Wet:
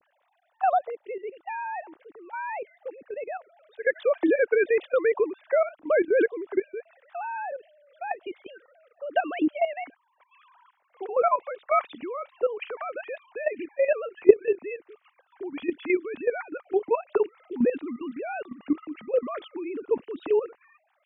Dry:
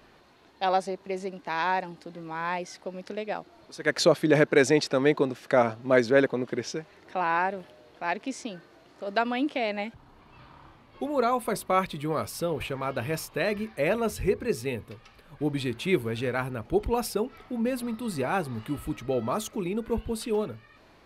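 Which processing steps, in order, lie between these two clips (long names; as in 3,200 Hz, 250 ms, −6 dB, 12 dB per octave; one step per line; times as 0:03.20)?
three sine waves on the formant tracks
output level in coarse steps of 13 dB
level +6.5 dB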